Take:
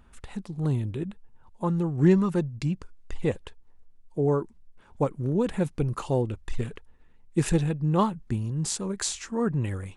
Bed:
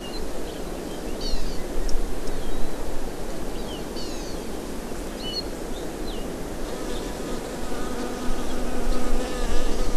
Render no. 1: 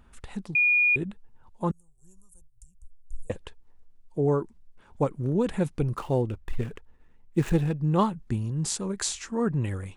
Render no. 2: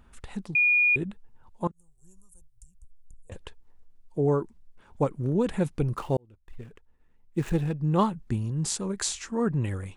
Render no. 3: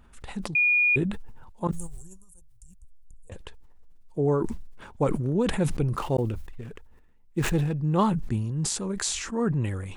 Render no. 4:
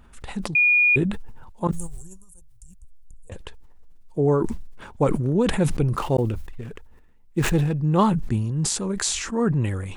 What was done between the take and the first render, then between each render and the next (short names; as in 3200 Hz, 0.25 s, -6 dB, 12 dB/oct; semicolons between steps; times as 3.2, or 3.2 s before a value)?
0.55–0.96 bleep 2440 Hz -18 dBFS; 1.71–3.3 inverse Chebyshev band-stop 120–4500 Hz; 5.97–7.82 median filter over 9 samples
1.67–3.32 compressor 16:1, threshold -42 dBFS; 6.17–8.03 fade in
sustainer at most 43 dB/s
gain +4 dB